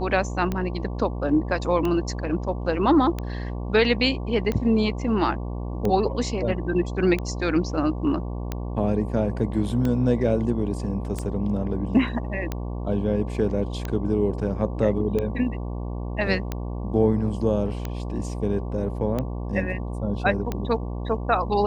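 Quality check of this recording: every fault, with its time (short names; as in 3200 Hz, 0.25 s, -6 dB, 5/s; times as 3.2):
buzz 60 Hz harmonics 19 -30 dBFS
tick 45 rpm -14 dBFS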